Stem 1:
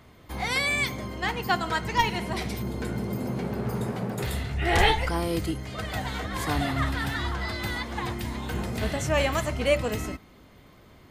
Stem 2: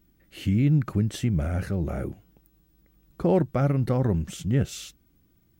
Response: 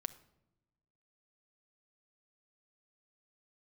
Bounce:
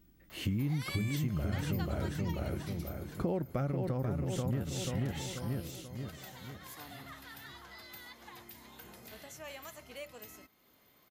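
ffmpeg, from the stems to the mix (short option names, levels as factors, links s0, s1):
-filter_complex "[0:a]aemphasis=mode=production:type=bsi,acompressor=threshold=0.00316:ratio=1.5,equalizer=f=8600:w=3.2:g=-8.5,adelay=300,volume=0.891,afade=t=out:st=1.69:d=0.61:silence=0.298538[s0];[1:a]volume=0.891,asplit=2[s1][s2];[s2]volume=0.562,aecho=0:1:486|972|1458|1944|2430|2916:1|0.46|0.212|0.0973|0.0448|0.0206[s3];[s0][s1][s3]amix=inputs=3:normalize=0,acompressor=threshold=0.0316:ratio=8"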